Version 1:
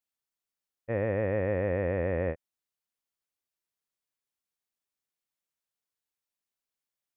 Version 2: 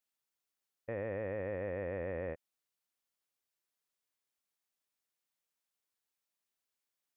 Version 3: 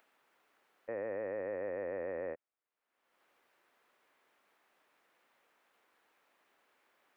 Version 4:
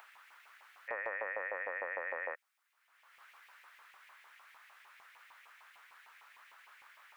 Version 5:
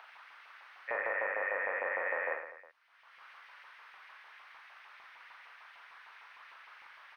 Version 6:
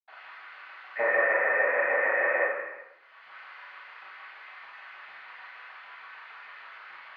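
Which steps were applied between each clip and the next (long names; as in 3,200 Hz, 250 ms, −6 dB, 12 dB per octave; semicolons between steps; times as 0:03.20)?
low-shelf EQ 190 Hz −6 dB; brickwall limiter −30 dBFS, peak gain reduction 10.5 dB; level +1 dB
three-way crossover with the lows and the highs turned down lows −18 dB, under 250 Hz, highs −22 dB, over 2,400 Hz; upward compression, threshold −54 dBFS; level +1 dB
brickwall limiter −35 dBFS, peak gain reduction 5.5 dB; auto-filter high-pass saw up 6.6 Hz 890–2,300 Hz; level +11 dB
Savitzky-Golay smoothing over 15 samples; on a send: reverse bouncing-ball delay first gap 40 ms, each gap 1.3×, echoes 5; on the sum: level +3 dB
convolution reverb RT60 0.85 s, pre-delay 77 ms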